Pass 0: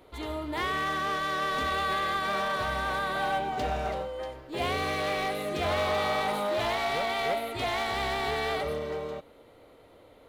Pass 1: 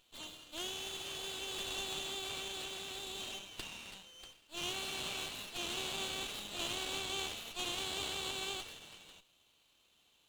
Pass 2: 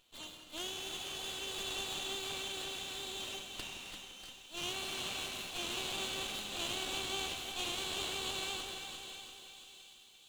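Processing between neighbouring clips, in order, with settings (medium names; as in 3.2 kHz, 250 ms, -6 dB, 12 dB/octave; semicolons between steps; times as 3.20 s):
elliptic high-pass 2.7 kHz, stop band 40 dB; sliding maximum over 5 samples; trim +2 dB
two-band feedback delay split 2.6 kHz, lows 170 ms, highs 660 ms, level -11.5 dB; bit-crushed delay 344 ms, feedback 55%, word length 11-bit, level -8 dB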